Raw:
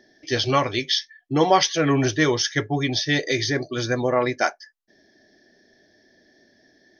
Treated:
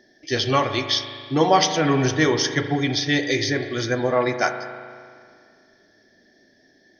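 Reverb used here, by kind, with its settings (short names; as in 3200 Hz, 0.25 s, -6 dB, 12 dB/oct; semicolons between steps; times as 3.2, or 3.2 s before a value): spring tank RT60 2.1 s, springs 38 ms, chirp 40 ms, DRR 7.5 dB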